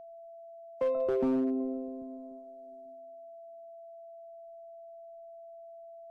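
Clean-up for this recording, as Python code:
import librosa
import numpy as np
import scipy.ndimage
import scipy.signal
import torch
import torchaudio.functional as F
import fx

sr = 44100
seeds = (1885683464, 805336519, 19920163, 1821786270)

y = fx.fix_declip(x, sr, threshold_db=-24.0)
y = fx.notch(y, sr, hz=670.0, q=30.0)
y = fx.fix_echo_inverse(y, sr, delay_ms=790, level_db=-22.0)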